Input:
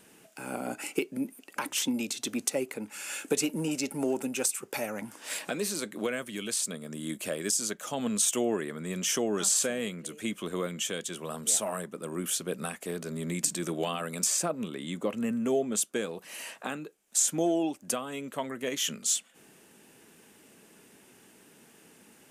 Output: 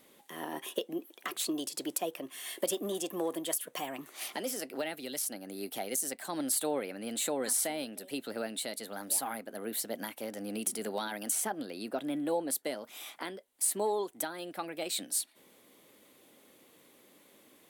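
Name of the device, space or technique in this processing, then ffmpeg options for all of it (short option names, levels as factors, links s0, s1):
nightcore: -af "asetrate=55566,aresample=44100,volume=0.631"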